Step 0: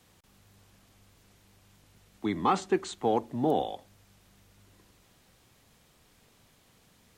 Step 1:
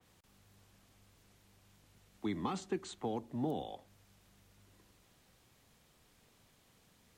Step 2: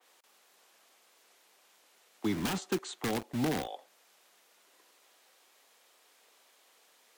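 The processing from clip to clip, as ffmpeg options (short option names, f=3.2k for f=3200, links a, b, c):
-filter_complex "[0:a]acrossover=split=270|3000[a][b][c];[b]acompressor=threshold=-33dB:ratio=6[d];[a][d][c]amix=inputs=3:normalize=0,adynamicequalizer=threshold=0.002:dfrequency=3000:dqfactor=0.7:tfrequency=3000:tqfactor=0.7:attack=5:release=100:ratio=0.375:range=2:mode=cutabove:tftype=highshelf,volume=-5dB"
-filter_complex "[0:a]acrossover=split=390[a][b];[a]acrusher=bits=7:mix=0:aa=0.000001[c];[b]aeval=exprs='(mod(53.1*val(0)+1,2)-1)/53.1':c=same[d];[c][d]amix=inputs=2:normalize=0,volume=5.5dB"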